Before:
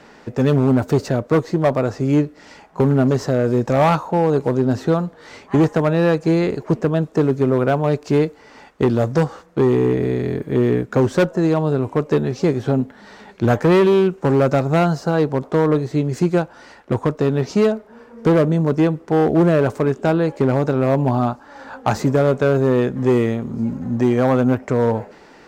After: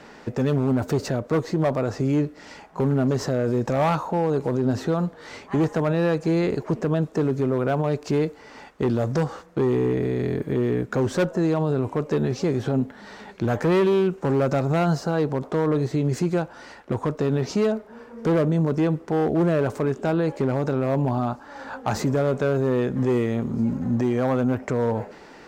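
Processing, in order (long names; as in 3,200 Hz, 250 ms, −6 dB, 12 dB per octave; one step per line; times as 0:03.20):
brickwall limiter −14.5 dBFS, peak gain reduction 8.5 dB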